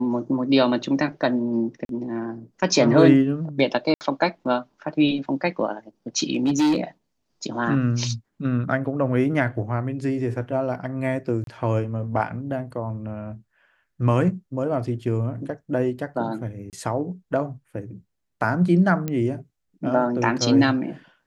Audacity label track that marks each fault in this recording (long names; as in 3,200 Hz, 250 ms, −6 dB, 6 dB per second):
1.850000	1.890000	drop-out 42 ms
3.940000	4.010000	drop-out 69 ms
6.330000	6.790000	clipping −16 dBFS
11.440000	11.470000	drop-out 32 ms
16.700000	16.730000	drop-out 28 ms
19.080000	19.080000	click −14 dBFS